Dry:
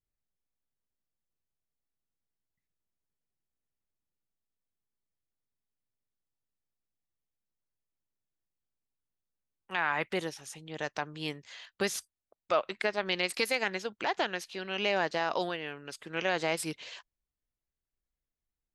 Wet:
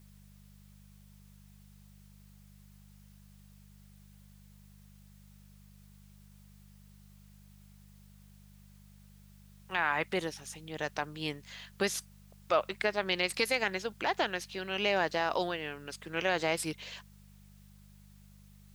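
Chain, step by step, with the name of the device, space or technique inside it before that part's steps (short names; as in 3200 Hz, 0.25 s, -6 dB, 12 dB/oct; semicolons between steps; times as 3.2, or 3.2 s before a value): video cassette with head-switching buzz (buzz 50 Hz, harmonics 4, -57 dBFS -2 dB/oct; white noise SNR 30 dB)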